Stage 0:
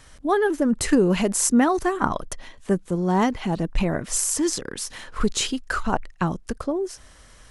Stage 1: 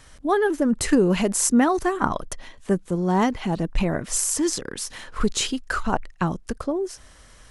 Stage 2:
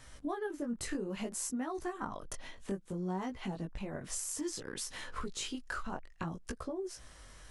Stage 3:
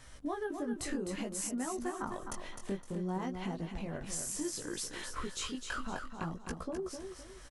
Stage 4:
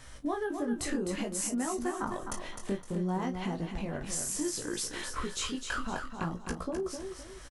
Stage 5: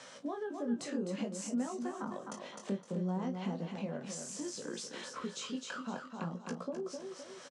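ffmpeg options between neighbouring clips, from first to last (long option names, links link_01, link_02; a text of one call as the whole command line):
ffmpeg -i in.wav -af anull out.wav
ffmpeg -i in.wav -af "acompressor=threshold=-31dB:ratio=6,flanger=delay=15.5:depth=6.2:speed=0.6,volume=-2dB" out.wav
ffmpeg -i in.wav -af "aecho=1:1:257|514|771|1028:0.447|0.152|0.0516|0.0176" out.wav
ffmpeg -i in.wav -filter_complex "[0:a]asplit=2[link_01][link_02];[link_02]adelay=34,volume=-12.5dB[link_03];[link_01][link_03]amix=inputs=2:normalize=0,volume=4dB" out.wav
ffmpeg -i in.wav -filter_complex "[0:a]highpass=frequency=200:width=0.5412,highpass=frequency=200:width=1.3066,equalizer=frequency=320:width_type=q:width=4:gain=-10,equalizer=frequency=530:width_type=q:width=4:gain=7,equalizer=frequency=1900:width_type=q:width=4:gain=-4,lowpass=frequency=7500:width=0.5412,lowpass=frequency=7500:width=1.3066,acrossover=split=270[link_01][link_02];[link_02]acompressor=threshold=-54dB:ratio=2[link_03];[link_01][link_03]amix=inputs=2:normalize=0,volume=4dB" out.wav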